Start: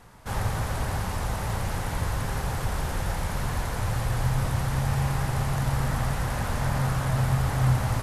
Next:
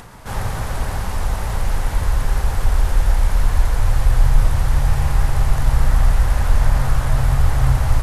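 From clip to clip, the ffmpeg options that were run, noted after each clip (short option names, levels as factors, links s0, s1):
-af "asubboost=boost=9.5:cutoff=51,acompressor=mode=upward:threshold=0.0178:ratio=2.5,volume=1.5"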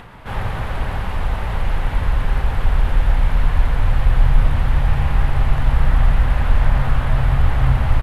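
-filter_complex "[0:a]highshelf=f=4300:t=q:w=1.5:g=-12,asplit=3[s0][s1][s2];[s1]adelay=98,afreqshift=110,volume=0.0794[s3];[s2]adelay=196,afreqshift=220,volume=0.0254[s4];[s0][s3][s4]amix=inputs=3:normalize=0"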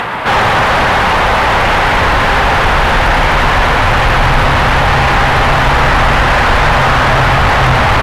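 -filter_complex "[0:a]asplit=2[s0][s1];[s1]highpass=f=720:p=1,volume=56.2,asoftclip=type=tanh:threshold=0.891[s2];[s0][s2]amix=inputs=2:normalize=0,lowpass=f=2900:p=1,volume=0.501"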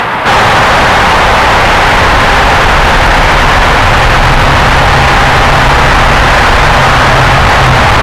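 -af "asoftclip=type=tanh:threshold=0.335,volume=2.37"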